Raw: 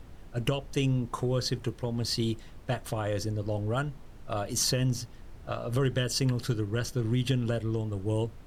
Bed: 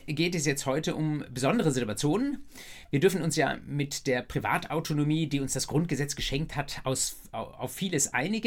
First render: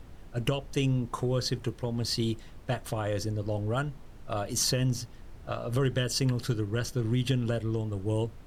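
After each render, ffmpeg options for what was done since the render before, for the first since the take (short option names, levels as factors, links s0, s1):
-af anull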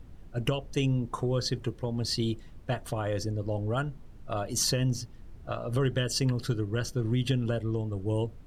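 -af "afftdn=nr=7:nf=-48"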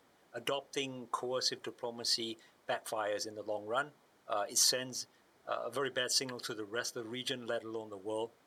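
-af "highpass=570,bandreject=f=2700:w=8.9"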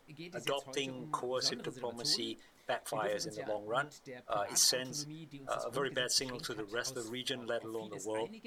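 -filter_complex "[1:a]volume=0.0891[s0];[0:a][s0]amix=inputs=2:normalize=0"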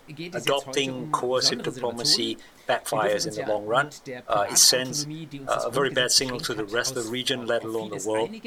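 -af "volume=3.98"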